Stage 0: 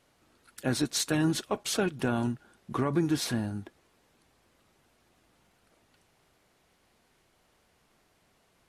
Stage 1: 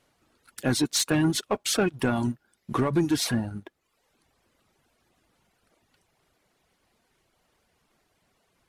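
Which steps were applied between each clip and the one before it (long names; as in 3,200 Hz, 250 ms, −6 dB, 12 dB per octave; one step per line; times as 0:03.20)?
reverb reduction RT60 0.81 s
leveller curve on the samples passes 1
level +2 dB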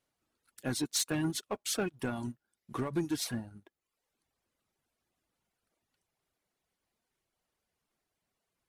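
high-shelf EQ 6,000 Hz +6 dB
expander for the loud parts 1.5 to 1, over −35 dBFS
level −8 dB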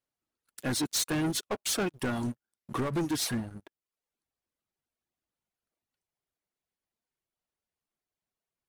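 leveller curve on the samples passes 3
level −3.5 dB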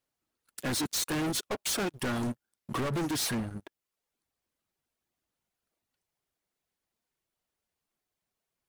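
hard clipping −33.5 dBFS, distortion −10 dB
level +4.5 dB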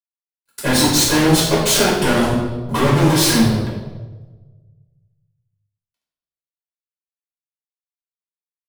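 mu-law and A-law mismatch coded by A
convolution reverb RT60 1.3 s, pre-delay 5 ms, DRR −6.5 dB
level +8.5 dB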